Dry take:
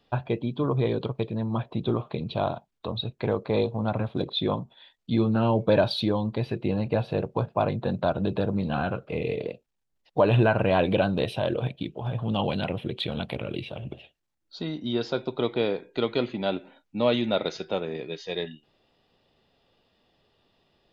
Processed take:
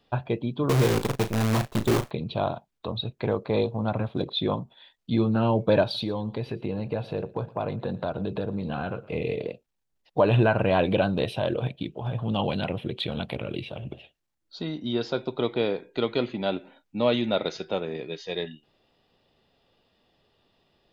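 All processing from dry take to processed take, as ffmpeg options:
-filter_complex "[0:a]asettb=1/sr,asplit=3[a][b][c];[a]atrim=end=0.694[d];[b]atrim=start=0.69:end=2.11,asetpts=PTS-STARTPTS,afade=t=in:d=0.004:c=qsin,afade=t=out:st=1.416:d=0.004:c=qsin,lowshelf=f=440:g=3.5,acrusher=bits=5:dc=4:mix=0:aa=0.000001,asplit=2[e][f];[f]adelay=37,volume=-9.5dB[g];[e][g]amix=inputs=2:normalize=0,atrim=end_sample=62622[h];[c]atrim=start=2.106[i];[d][h]acrossfade=d=0.004:c1=hsin:c2=qsin[j];[j][i]acrossfade=d=0.004:c1=qsin:c2=hsin,asettb=1/sr,asplit=3[k][l][m];[k]atrim=end=5.834[n];[l]atrim=start=5.83:end=9.08,asetpts=PTS-STARTPTS,afade=t=in:d=0.004:c=qsin,afade=t=out:st=3.246:d=0.004:c=qsin,equalizer=f=450:w=5.8:g=4,acompressor=threshold=-28dB:ratio=2:attack=3.2:release=140:knee=1:detection=peak,aecho=1:1:114:0.0944,atrim=end_sample=143325[o];[m]atrim=start=9.076[p];[n][o]acrossfade=d=0.004:c1=hsin:c2=qsin[q];[q][p]acrossfade=d=0.004:c1=qsin:c2=hsin"

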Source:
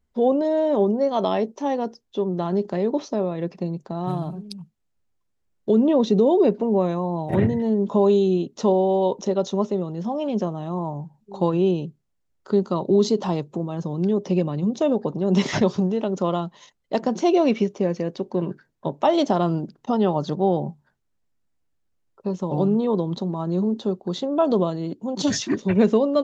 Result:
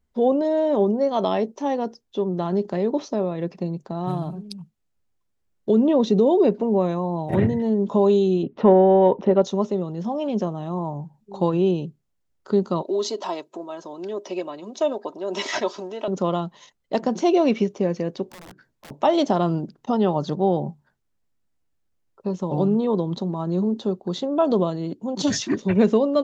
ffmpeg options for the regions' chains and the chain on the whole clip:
-filter_complex "[0:a]asettb=1/sr,asplit=3[a][b][c];[a]atrim=end=8.434[d];[b]atrim=start=8.43:end=9.42,asetpts=PTS-STARTPTS,afade=t=in:d=0.004:c=qsin,afade=t=out:st=0.986:d=0.004:c=qsin,lowpass=f=2.6k:w=0.5412,lowpass=f=2.6k:w=1.3066,acontrast=29[e];[c]atrim=start=9.416[f];[d][e]acrossfade=d=0.004:c1=hsin:c2=qsin[g];[g][f]acrossfade=d=0.004:c1=qsin:c2=hsin,asettb=1/sr,asplit=3[h][i][j];[h]atrim=end=12.824[k];[i]atrim=start=12.82:end=16.08,asetpts=PTS-STARTPTS,afade=t=in:d=0.004:c=qsin,afade=t=out:st=3.256:d=0.004:c=qsin,highpass=530,aecho=1:1:3.1:0.48,atrim=end_sample=143766[l];[j]atrim=start=16.076[m];[k][l]acrossfade=d=0.004:c1=hsin:c2=qsin[n];[n][m]acrossfade=d=0.004:c1=qsin:c2=hsin,asettb=1/sr,asplit=3[o][p][q];[o]atrim=end=18.264[r];[p]atrim=start=18.26:end=18.91,asetpts=PTS-STARTPTS,afade=t=in:d=0.004:c=qsin,afade=t=out:st=0.646:d=0.004:c=qsin,asplit=2[s][t];[t]adelay=16,volume=-7dB[u];[s][u]amix=inputs=2:normalize=0,atrim=end_sample=28665,acompressor=threshold=-37dB:ratio=12:attack=3.2:release=140:knee=1:detection=peak,aeval=exprs='(mod(70.8*val(0)+1,2)-1)/70.8':c=same[v];[q]atrim=start=18.906[w];[r][v]acrossfade=d=0.004:c1=hsin:c2=qsin[x];[x][w]acrossfade=d=0.004:c1=qsin:c2=hsin"

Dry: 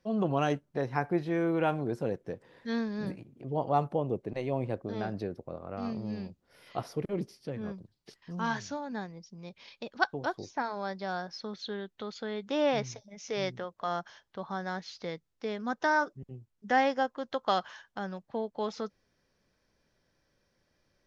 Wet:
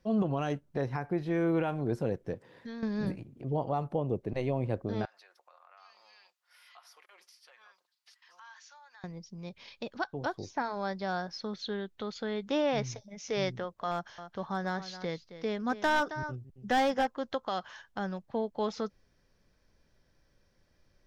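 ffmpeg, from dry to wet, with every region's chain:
-filter_complex "[0:a]asettb=1/sr,asplit=3[a][b][c];[a]atrim=end=2.344[d];[b]atrim=start=2.34:end=2.83,asetpts=PTS-STARTPTS,afade=t=in:d=0.004:c=qsin,afade=t=out:st=0.486:d=0.004:c=qsin,highpass=98,acompressor=threshold=-41dB:ratio=6:attack=3.2:release=140:knee=1:detection=peak[e];[c]atrim=start=2.826[f];[d][e]acrossfade=d=0.004:c1=hsin:c2=qsin[g];[g][f]acrossfade=d=0.004:c1=qsin:c2=hsin,asettb=1/sr,asplit=3[h][i][j];[h]atrim=end=5.054[k];[i]atrim=start=5.05:end=9.04,asetpts=PTS-STARTPTS,afade=t=in:d=0.004:c=qsin,afade=t=out:st=3.986:d=0.004:c=qsin,highpass=f=1k:w=0.5412,highpass=f=1k:w=1.3066,aecho=1:1:5.6:0.33,atrim=end_sample=175959,acompressor=threshold=-57dB:ratio=3:attack=3.2:release=140:knee=1:detection=peak[l];[j]atrim=start=9.036[m];[k][l]acrossfade=d=0.004:c1=hsin:c2=qsin[n];[n][m]acrossfade=d=0.004:c1=qsin:c2=hsin,asettb=1/sr,asplit=3[o][p][q];[o]atrim=end=13.914[r];[p]atrim=start=13.91:end=17.07,asetpts=PTS-STARTPTS,afade=t=in:d=0.004:c=qsin,afade=t=out:st=3.156:d=0.004:c=qsin,aecho=1:1:270:0.224,atrim=end_sample=139356,asoftclip=type=hard:threshold=-23.5dB[s];[q]atrim=start=17.066[t];[r][s]acrossfade=d=0.004:c1=hsin:c2=qsin[u];[u][t]acrossfade=d=0.004:c1=qsin:c2=hsin,alimiter=limit=-22dB:level=0:latency=1:release=238,lowshelf=f=82:g=12,volume=1dB"

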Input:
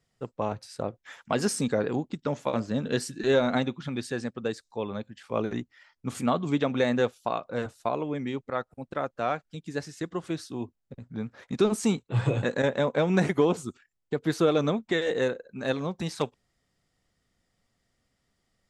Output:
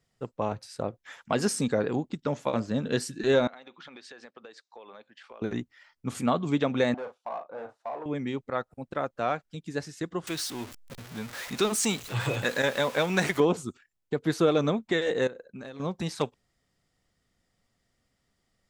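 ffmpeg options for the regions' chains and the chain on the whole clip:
-filter_complex "[0:a]asettb=1/sr,asplit=3[a][b][c];[a]atrim=end=3.474[d];[b]atrim=start=3.47:end=5.42,asetpts=PTS-STARTPTS,afade=t=in:d=0.004:c=qsin,afade=t=out:st=1.946:d=0.004:c=qsin,highpass=550,lowpass=4.4k,acompressor=threshold=-42dB:ratio=20:attack=3.2:release=140:knee=1:detection=peak[e];[c]atrim=start=5.416[f];[d][e]acrossfade=d=0.004:c1=hsin:c2=qsin[g];[g][f]acrossfade=d=0.004:c1=qsin:c2=hsin,asettb=1/sr,asplit=3[h][i][j];[h]atrim=end=6.944[k];[i]atrim=start=6.94:end=8.06,asetpts=PTS-STARTPTS,afade=t=in:d=0.004:c=qsin,afade=t=out:st=1.116:d=0.004:c=qsin,volume=28dB,asoftclip=hard,volume=-28dB,bandpass=f=810:t=q:w=1.6,asplit=2[l][m];[m]adelay=39,volume=-8dB[n];[l][n]amix=inputs=2:normalize=0,atrim=end_sample=49392[o];[j]atrim=start=8.056[p];[k][o]acrossfade=d=0.004:c1=hsin:c2=qsin[q];[q][p]acrossfade=d=0.004:c1=qsin:c2=hsin,asettb=1/sr,asplit=3[r][s][t];[r]atrim=end=10.274[u];[s]atrim=start=10.27:end=13.4,asetpts=PTS-STARTPTS,afade=t=in:d=0.004:c=qsin,afade=t=out:st=3.126:d=0.004:c=qsin,aeval=exprs='val(0)+0.5*0.0126*sgn(val(0))':c=same,tiltshelf=f=850:g=-6.5[v];[t]atrim=start=13.396[w];[u][v]acrossfade=d=0.004:c1=hsin:c2=qsin[x];[x][w]acrossfade=d=0.004:c1=qsin:c2=hsin,asettb=1/sr,asplit=3[y][z][aa];[y]atrim=end=15.274[ab];[z]atrim=start=15.27:end=15.8,asetpts=PTS-STARTPTS,afade=t=in:d=0.004:c=qsin,afade=t=out:st=0.526:d=0.004:c=qsin,agate=range=-33dB:threshold=-50dB:ratio=3:release=100:detection=peak,acompressor=threshold=-37dB:ratio=16:attack=3.2:release=140:knee=1:detection=peak[ac];[aa]atrim=start=15.796[ad];[ab][ac]acrossfade=d=0.004:c1=hsin:c2=qsin[ae];[ae][ad]acrossfade=d=0.004:c1=qsin:c2=hsin"

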